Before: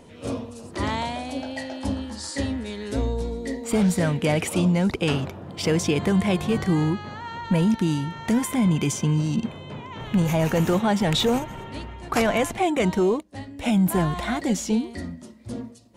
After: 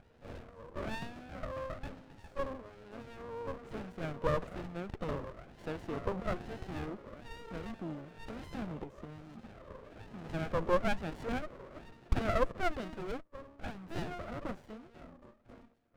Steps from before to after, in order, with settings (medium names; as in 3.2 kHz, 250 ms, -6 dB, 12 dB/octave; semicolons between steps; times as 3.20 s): wah-wah 1.1 Hz 530–1200 Hz, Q 7.3; 8.83–10.22 s: compression 6:1, threshold -46 dBFS, peak gain reduction 9 dB; sliding maximum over 33 samples; trim +4.5 dB